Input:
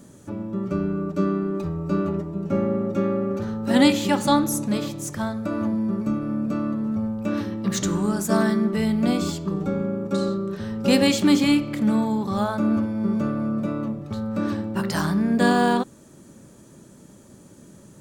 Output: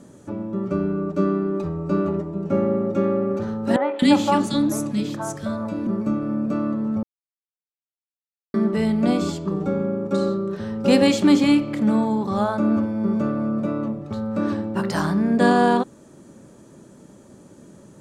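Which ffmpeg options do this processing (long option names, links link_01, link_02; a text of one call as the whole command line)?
ffmpeg -i in.wav -filter_complex "[0:a]asettb=1/sr,asplit=3[link_01][link_02][link_03];[link_01]atrim=end=3.764[link_04];[link_02]atrim=start=3.76:end=5.87,asetpts=PTS-STARTPTS,afade=type=in:duration=0.004:curve=qsin,afade=type=out:start_time=2.106:duration=0.004:curve=qsin,acrossover=split=450|1700[link_05][link_06][link_07];[link_07]adelay=230[link_08];[link_05]adelay=260[link_09];[link_09][link_06][link_08]amix=inputs=3:normalize=0,atrim=end_sample=93051[link_10];[link_03]atrim=start=5.866[link_11];[link_04][link_10]acrossfade=duration=0.004:curve1=hsin:curve2=qsin[link_12];[link_12][link_11]acrossfade=duration=0.004:curve1=qsin:curve2=hsin,asplit=3[link_13][link_14][link_15];[link_13]atrim=end=7.03,asetpts=PTS-STARTPTS,afade=type=out:start_time=7.026:duration=0.004:curve=hsin[link_16];[link_14]atrim=start=7.03:end=8.54,asetpts=PTS-STARTPTS,volume=0[link_17];[link_15]atrim=start=8.54,asetpts=PTS-STARTPTS,afade=type=in:duration=0.004:curve=hsin[link_18];[link_16][link_17][link_18]concat=n=3:v=0:a=1,lowpass=11000,equalizer=frequency=540:width=0.37:gain=6,volume=-2.5dB" out.wav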